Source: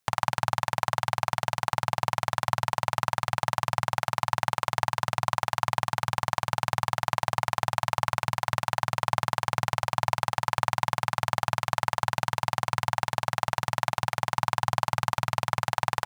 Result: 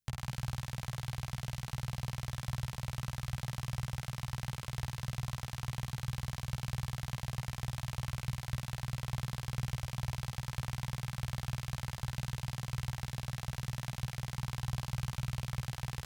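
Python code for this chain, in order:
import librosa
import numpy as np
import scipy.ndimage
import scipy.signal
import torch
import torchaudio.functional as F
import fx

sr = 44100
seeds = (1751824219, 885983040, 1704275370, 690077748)

y = fx.tone_stack(x, sr, knobs='10-0-1')
y = fx.doubler(y, sr, ms=15.0, db=-5.0)
y = fx.echo_wet_highpass(y, sr, ms=118, feedback_pct=59, hz=2900.0, wet_db=-12.0)
y = y * 10.0 ** (9.5 / 20.0)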